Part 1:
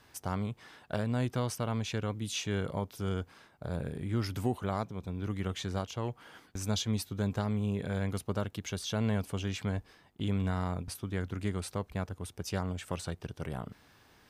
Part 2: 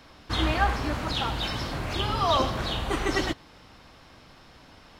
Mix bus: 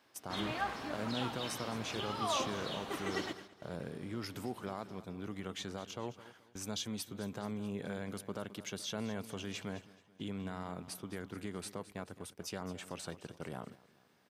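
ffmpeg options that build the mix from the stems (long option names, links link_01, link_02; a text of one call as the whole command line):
ffmpeg -i stem1.wav -i stem2.wav -filter_complex "[0:a]alimiter=level_in=1dB:limit=-24dB:level=0:latency=1,volume=-1dB,volume=-3dB,asplit=2[link_01][link_02];[link_02]volume=-15dB[link_03];[1:a]volume=-11.5dB,asplit=2[link_04][link_05];[link_05]volume=-16dB[link_06];[link_03][link_06]amix=inputs=2:normalize=0,aecho=0:1:215|430|645|860|1075|1290|1505|1720:1|0.56|0.314|0.176|0.0983|0.0551|0.0308|0.0173[link_07];[link_01][link_04][link_07]amix=inputs=3:normalize=0,highpass=180,agate=range=-7dB:threshold=-51dB:ratio=16:detection=peak" out.wav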